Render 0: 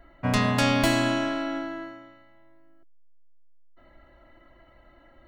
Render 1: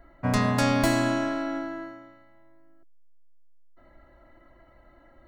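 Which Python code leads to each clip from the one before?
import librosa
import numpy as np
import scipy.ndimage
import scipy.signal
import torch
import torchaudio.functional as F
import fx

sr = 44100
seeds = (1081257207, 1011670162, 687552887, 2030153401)

y = fx.peak_eq(x, sr, hz=3000.0, db=-8.0, octaves=0.77)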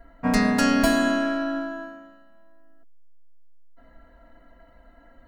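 y = x + 0.97 * np.pad(x, (int(4.3 * sr / 1000.0), 0))[:len(x)]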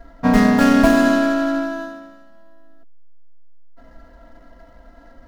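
y = scipy.signal.medfilt(x, 15)
y = F.gain(torch.from_numpy(y), 7.5).numpy()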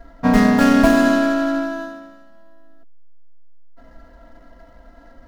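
y = x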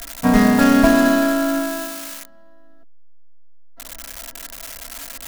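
y = x + 0.5 * 10.0 ** (-17.0 / 20.0) * np.diff(np.sign(x), prepend=np.sign(x[:1]))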